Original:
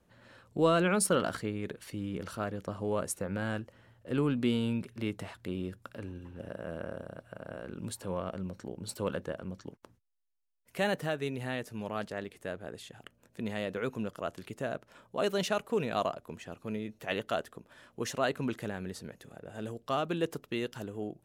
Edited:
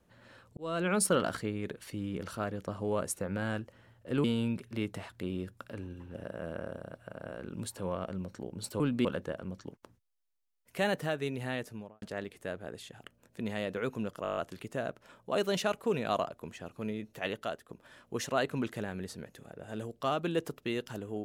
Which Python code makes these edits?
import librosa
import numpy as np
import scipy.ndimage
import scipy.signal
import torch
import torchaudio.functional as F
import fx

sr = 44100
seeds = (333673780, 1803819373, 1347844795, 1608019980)

y = fx.studio_fade_out(x, sr, start_s=11.62, length_s=0.4)
y = fx.edit(y, sr, fx.fade_in_span(start_s=0.57, length_s=0.42),
    fx.move(start_s=4.24, length_s=0.25, to_s=9.05),
    fx.stutter(start_s=14.23, slice_s=0.02, count=8),
    fx.fade_out_to(start_s=16.97, length_s=0.58, floor_db=-8.0), tone=tone)